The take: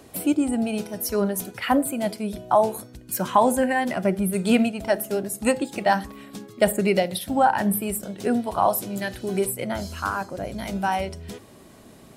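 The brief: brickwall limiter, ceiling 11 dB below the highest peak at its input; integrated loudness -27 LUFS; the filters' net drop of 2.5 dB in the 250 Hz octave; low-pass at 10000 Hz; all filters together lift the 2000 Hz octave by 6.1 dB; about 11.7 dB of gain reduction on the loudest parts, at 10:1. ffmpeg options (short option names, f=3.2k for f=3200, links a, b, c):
-af "lowpass=10k,equalizer=f=250:t=o:g=-3,equalizer=f=2k:t=o:g=7.5,acompressor=threshold=-24dB:ratio=10,volume=5.5dB,alimiter=limit=-16.5dB:level=0:latency=1"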